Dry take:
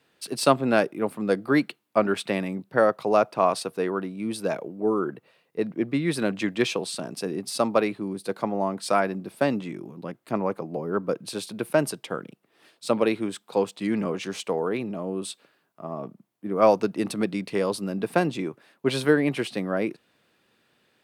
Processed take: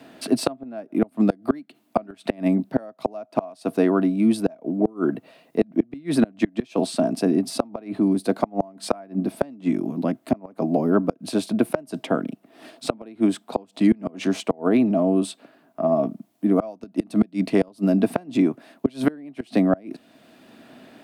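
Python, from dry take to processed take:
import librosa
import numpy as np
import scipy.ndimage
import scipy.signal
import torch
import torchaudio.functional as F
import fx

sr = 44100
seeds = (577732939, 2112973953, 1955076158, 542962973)

y = fx.small_body(x, sr, hz=(260.0, 650.0), ring_ms=35, db=15)
y = fx.gate_flip(y, sr, shuts_db=-8.0, range_db=-30)
y = fx.band_squash(y, sr, depth_pct=40)
y = y * 10.0 ** (2.0 / 20.0)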